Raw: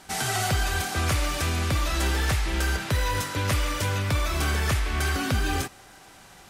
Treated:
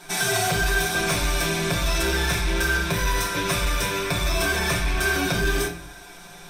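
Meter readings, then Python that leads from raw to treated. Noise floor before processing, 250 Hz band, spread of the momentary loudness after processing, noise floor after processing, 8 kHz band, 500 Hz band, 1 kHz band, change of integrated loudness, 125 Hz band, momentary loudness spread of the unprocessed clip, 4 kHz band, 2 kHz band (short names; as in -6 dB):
-50 dBFS, +3.0 dB, 3 LU, -43 dBFS, +4.5 dB, +6.0 dB, +2.0 dB, +3.0 dB, -2.0 dB, 2 LU, +4.5 dB, +6.0 dB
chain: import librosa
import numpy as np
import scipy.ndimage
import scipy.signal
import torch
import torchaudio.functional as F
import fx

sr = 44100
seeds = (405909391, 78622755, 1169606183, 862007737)

y = fx.low_shelf(x, sr, hz=120.0, db=-5.5)
y = fx.hum_notches(y, sr, base_hz=60, count=5)
y = y + 0.87 * np.pad(y, (int(5.7 * sr / 1000.0), 0))[:len(y)]
y = fx.room_shoebox(y, sr, seeds[0], volume_m3=43.0, walls='mixed', distance_m=0.48)
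y = 10.0 ** (-18.5 / 20.0) * np.tanh(y / 10.0 ** (-18.5 / 20.0))
y = fx.ripple_eq(y, sr, per_octave=1.6, db=8)
y = y * librosa.db_to_amplitude(1.5)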